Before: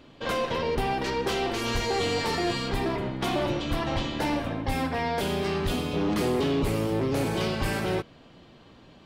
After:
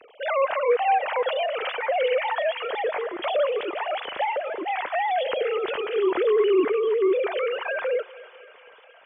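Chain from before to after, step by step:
three sine waves on the formant tracks
on a send: feedback echo with a high-pass in the loop 242 ms, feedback 80%, high-pass 530 Hz, level −18 dB
on the sum: level +3 dB

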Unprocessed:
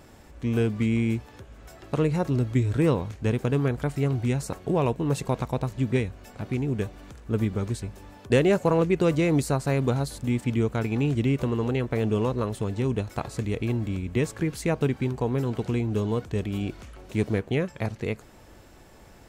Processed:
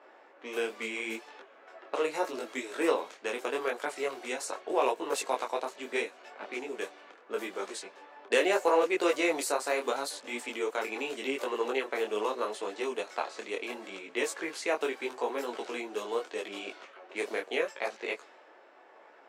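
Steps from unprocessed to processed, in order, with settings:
low-pass that shuts in the quiet parts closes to 1,700 Hz, open at −21.5 dBFS
Bessel high-pass filter 590 Hz, order 6
micro pitch shift up and down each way 27 cents
level +6 dB

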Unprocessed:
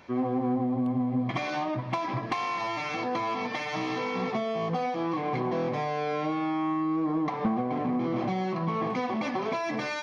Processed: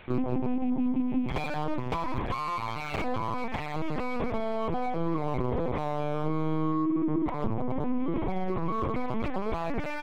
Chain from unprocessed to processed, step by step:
loose part that buzzes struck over −29 dBFS, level −39 dBFS
parametric band 270 Hz +5.5 dB 0.75 octaves
mains-hum notches 60/120/180/240 Hz
repeating echo 891 ms, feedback 22%, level −15.5 dB
downward compressor 16 to 1, threshold −25 dBFS, peak gain reduction 7 dB
linear-prediction vocoder at 8 kHz pitch kept
high-shelf EQ 2,900 Hz +8 dB, from 0:03.18 −3.5 dB
slew-rate limiting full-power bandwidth 41 Hz
level +1.5 dB

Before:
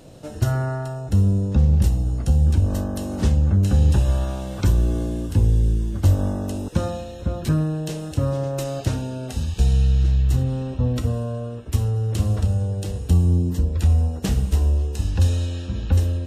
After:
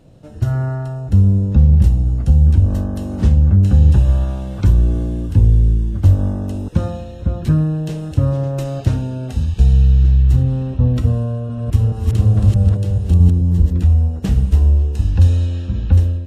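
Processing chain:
0:11.28–0:13.83: delay that plays each chunk backwards 213 ms, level −0.5 dB
automatic gain control gain up to 9.5 dB
bass and treble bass +7 dB, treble −6 dB
level −6.5 dB

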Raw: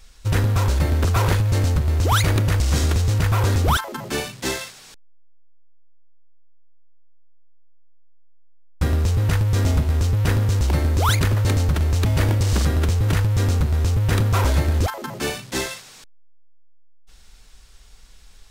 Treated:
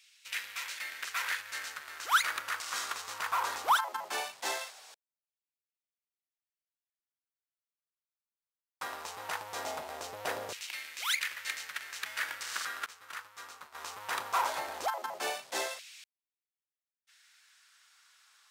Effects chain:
0:12.86–0:13.75: downward expander −11 dBFS
auto-filter high-pass saw down 0.19 Hz 610–2,500 Hz
level −9 dB

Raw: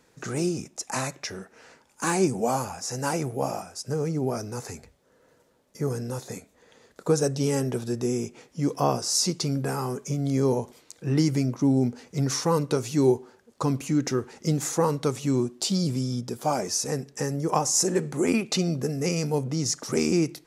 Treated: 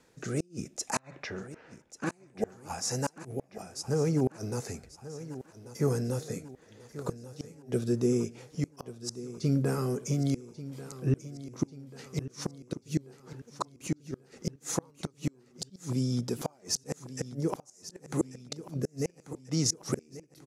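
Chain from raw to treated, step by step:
0:00.99–0:02.12: low-pass filter 2,600 Hz 12 dB per octave
gate with flip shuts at −16 dBFS, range −36 dB
rotating-speaker cabinet horn 0.65 Hz
on a send: repeating echo 1,139 ms, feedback 49%, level −14.5 dB
on the sum: level +1 dB

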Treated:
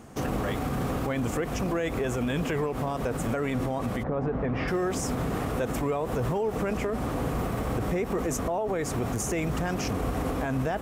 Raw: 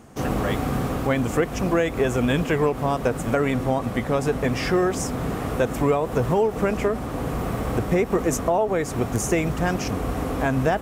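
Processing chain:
0:04.02–0:04.67: low-pass filter 1,100 Hz → 2,000 Hz 12 dB per octave
brickwall limiter −20.5 dBFS, peak gain reduction 10 dB

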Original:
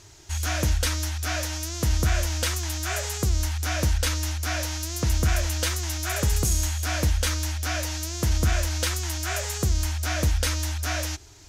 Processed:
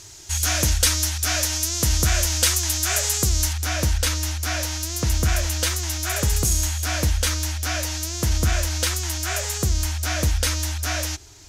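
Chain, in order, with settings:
parametric band 9,900 Hz +10 dB 2.6 octaves, from 0:03.53 +3.5 dB
level +1.5 dB

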